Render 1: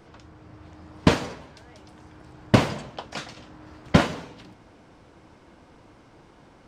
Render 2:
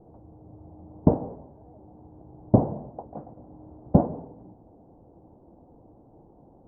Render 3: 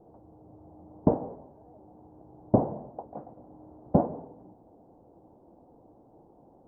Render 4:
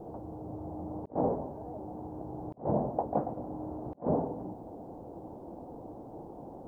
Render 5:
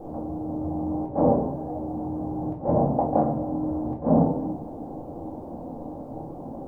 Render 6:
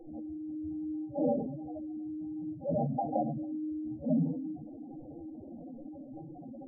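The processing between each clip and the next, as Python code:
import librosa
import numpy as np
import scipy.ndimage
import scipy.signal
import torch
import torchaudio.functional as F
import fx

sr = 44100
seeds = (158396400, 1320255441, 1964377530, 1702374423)

y1 = scipy.signal.sosfilt(scipy.signal.cheby1(4, 1.0, 810.0, 'lowpass', fs=sr, output='sos'), x)
y2 = fx.low_shelf(y1, sr, hz=190.0, db=-10.0)
y3 = fx.over_compress(y2, sr, threshold_db=-37.0, ratio=-0.5)
y3 = F.gain(torch.from_numpy(y3), 4.5).numpy()
y4 = fx.room_shoebox(y3, sr, seeds[0], volume_m3=310.0, walls='furnished', distance_m=2.2)
y4 = F.gain(torch.from_numpy(y4), 3.5).numpy()
y5 = fx.spec_expand(y4, sr, power=3.1)
y5 = F.gain(torch.from_numpy(y5), -8.5).numpy()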